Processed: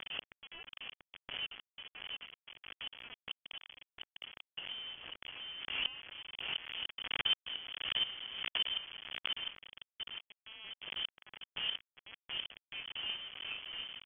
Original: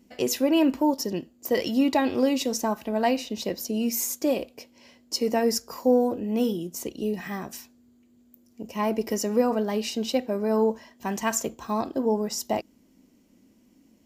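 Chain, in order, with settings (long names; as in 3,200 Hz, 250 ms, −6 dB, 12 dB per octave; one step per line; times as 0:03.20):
adaptive Wiener filter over 41 samples
mains-hum notches 60/120/180/240/300/360/420/480/540 Hz
on a send: single-tap delay 996 ms −22.5 dB
on the sum: gate with flip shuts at −28 dBFS, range −38 dB
feedback echo with a low-pass in the loop 703 ms, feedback 55%, low-pass 800 Hz, level −3.5 dB
log-companded quantiser 4 bits
voice inversion scrambler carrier 3,300 Hz
background raised ahead of every attack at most 53 dB per second
level +5 dB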